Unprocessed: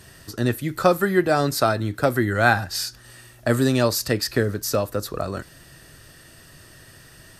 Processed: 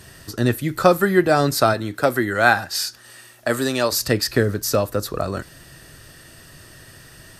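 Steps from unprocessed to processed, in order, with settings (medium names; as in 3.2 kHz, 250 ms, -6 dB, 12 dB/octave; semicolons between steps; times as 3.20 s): 1.73–3.91 s: high-pass 230 Hz -> 560 Hz 6 dB/octave; trim +3 dB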